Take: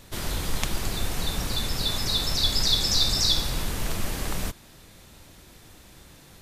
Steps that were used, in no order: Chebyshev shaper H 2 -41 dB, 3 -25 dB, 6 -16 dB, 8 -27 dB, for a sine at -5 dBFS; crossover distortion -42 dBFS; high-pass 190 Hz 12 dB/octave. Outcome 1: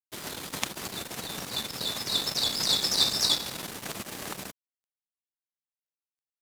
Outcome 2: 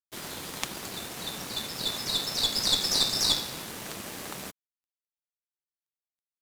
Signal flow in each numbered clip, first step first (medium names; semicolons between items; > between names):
Chebyshev shaper > high-pass > crossover distortion; high-pass > Chebyshev shaper > crossover distortion